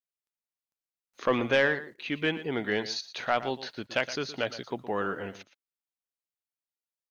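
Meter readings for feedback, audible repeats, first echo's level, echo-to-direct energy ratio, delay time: no steady repeat, 1, -14.5 dB, -14.5 dB, 0.117 s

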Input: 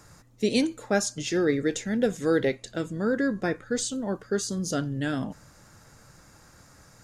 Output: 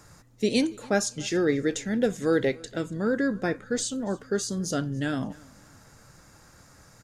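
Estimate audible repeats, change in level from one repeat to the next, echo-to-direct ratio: 2, -9.5 dB, -23.5 dB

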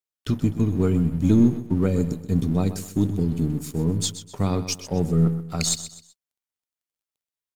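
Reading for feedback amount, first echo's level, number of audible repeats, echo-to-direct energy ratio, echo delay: 34%, -12.5 dB, 3, -12.0 dB, 0.127 s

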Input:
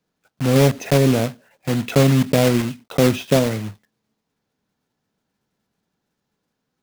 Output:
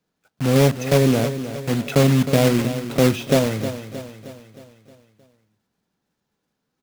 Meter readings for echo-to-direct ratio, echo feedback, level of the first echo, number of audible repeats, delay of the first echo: -10.0 dB, 52%, -11.5 dB, 5, 0.312 s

